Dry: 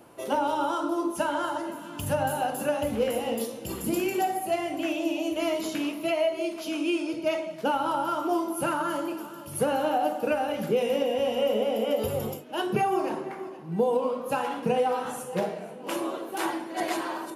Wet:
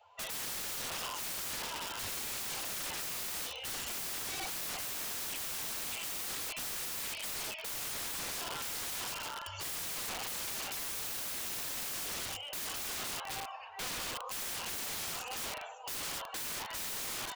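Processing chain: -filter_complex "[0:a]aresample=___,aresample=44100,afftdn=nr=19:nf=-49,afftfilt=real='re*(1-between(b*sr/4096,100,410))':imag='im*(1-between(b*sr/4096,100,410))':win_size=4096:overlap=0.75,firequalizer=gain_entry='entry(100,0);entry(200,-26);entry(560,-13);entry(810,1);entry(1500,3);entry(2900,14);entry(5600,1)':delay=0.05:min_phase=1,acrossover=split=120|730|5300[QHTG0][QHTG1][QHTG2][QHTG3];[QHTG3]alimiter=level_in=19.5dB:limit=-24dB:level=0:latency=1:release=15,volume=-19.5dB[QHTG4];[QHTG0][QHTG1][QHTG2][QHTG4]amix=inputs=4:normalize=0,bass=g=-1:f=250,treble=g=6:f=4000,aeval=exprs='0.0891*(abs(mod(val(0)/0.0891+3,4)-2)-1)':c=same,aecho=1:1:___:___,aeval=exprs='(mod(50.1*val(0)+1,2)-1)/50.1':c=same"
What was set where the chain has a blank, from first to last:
16000, 557, 0.141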